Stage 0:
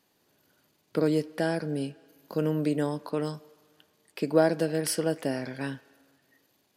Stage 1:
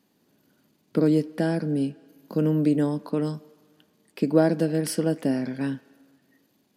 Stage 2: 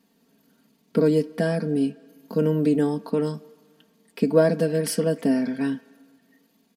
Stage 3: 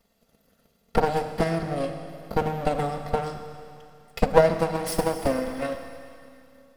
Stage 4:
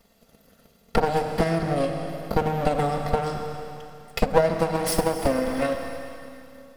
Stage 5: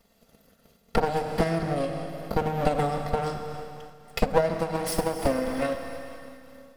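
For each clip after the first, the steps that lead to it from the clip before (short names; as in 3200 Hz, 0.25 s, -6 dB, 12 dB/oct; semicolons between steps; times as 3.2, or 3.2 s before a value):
bell 220 Hz +12 dB 1.3 oct; gain -1.5 dB
comb 4.4 ms, depth 83%
minimum comb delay 1.5 ms; Schroeder reverb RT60 2.6 s, combs from 27 ms, DRR 5.5 dB; transient shaper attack +8 dB, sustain +1 dB; gain -2.5 dB
compressor 2:1, threshold -30 dBFS, peak gain reduction 11 dB; gain +7.5 dB
noise-modulated level, depth 55%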